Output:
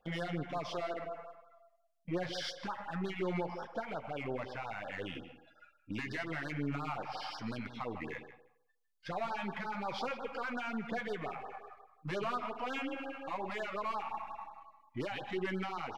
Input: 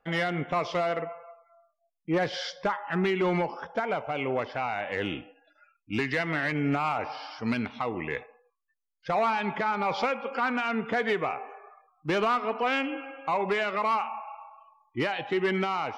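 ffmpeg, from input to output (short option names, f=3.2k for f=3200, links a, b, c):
-filter_complex "[0:a]aeval=exprs='if(lt(val(0),0),0.708*val(0),val(0))':c=same,alimiter=level_in=5.5dB:limit=-24dB:level=0:latency=1:release=183,volume=-5.5dB,flanger=delay=5.5:depth=6.8:regen=-39:speed=0.28:shape=sinusoidal,asplit=2[a][b];[b]adelay=155,lowpass=f=2.9k:p=1,volume=-11dB,asplit=2[c][d];[d]adelay=155,lowpass=f=2.9k:p=1,volume=0.19,asplit=2[e][f];[f]adelay=155,lowpass=f=2.9k:p=1,volume=0.19[g];[c][e][g]amix=inputs=3:normalize=0[h];[a][h]amix=inputs=2:normalize=0,afftfilt=real='re*(1-between(b*sr/1024,330*pow(2600/330,0.5+0.5*sin(2*PI*5.6*pts/sr))/1.41,330*pow(2600/330,0.5+0.5*sin(2*PI*5.6*pts/sr))*1.41))':imag='im*(1-between(b*sr/1024,330*pow(2600/330,0.5+0.5*sin(2*PI*5.6*pts/sr))/1.41,330*pow(2600/330,0.5+0.5*sin(2*PI*5.6*pts/sr))*1.41))':win_size=1024:overlap=0.75,volume=4.5dB"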